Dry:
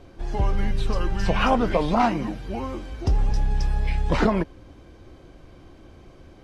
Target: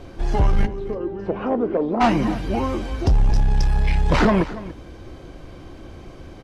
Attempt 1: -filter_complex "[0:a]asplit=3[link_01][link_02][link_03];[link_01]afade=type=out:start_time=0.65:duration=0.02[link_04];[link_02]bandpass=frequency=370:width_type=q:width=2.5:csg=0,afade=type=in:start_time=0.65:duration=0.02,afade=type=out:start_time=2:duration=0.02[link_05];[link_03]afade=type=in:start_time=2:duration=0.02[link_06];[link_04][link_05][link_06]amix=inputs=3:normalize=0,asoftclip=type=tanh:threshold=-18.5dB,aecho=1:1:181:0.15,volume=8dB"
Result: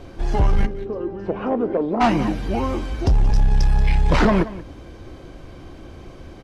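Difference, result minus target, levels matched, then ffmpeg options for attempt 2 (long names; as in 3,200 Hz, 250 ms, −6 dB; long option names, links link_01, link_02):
echo 104 ms early
-filter_complex "[0:a]asplit=3[link_01][link_02][link_03];[link_01]afade=type=out:start_time=0.65:duration=0.02[link_04];[link_02]bandpass=frequency=370:width_type=q:width=2.5:csg=0,afade=type=in:start_time=0.65:duration=0.02,afade=type=out:start_time=2:duration=0.02[link_05];[link_03]afade=type=in:start_time=2:duration=0.02[link_06];[link_04][link_05][link_06]amix=inputs=3:normalize=0,asoftclip=type=tanh:threshold=-18.5dB,aecho=1:1:285:0.15,volume=8dB"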